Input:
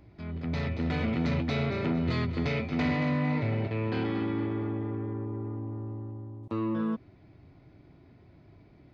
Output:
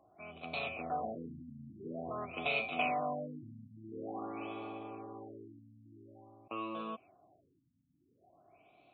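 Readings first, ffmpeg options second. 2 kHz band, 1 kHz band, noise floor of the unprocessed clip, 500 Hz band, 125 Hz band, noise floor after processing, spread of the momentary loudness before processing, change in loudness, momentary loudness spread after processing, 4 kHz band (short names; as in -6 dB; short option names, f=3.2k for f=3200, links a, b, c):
-3.5 dB, 0.0 dB, -57 dBFS, -7.0 dB, -22.0 dB, -74 dBFS, 9 LU, -8.5 dB, 22 LU, -4.0 dB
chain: -filter_complex "[0:a]asplit=3[a][b][c];[a]bandpass=f=730:t=q:w=8,volume=0dB[d];[b]bandpass=f=1.09k:t=q:w=8,volume=-6dB[e];[c]bandpass=f=2.44k:t=q:w=8,volume=-9dB[f];[d][e][f]amix=inputs=3:normalize=0,aexciter=amount=3.1:drive=9.1:freq=2.5k,afftfilt=real='re*lt(b*sr/1024,270*pow(4400/270,0.5+0.5*sin(2*PI*0.48*pts/sr)))':imag='im*lt(b*sr/1024,270*pow(4400/270,0.5+0.5*sin(2*PI*0.48*pts/sr)))':win_size=1024:overlap=0.75,volume=7.5dB"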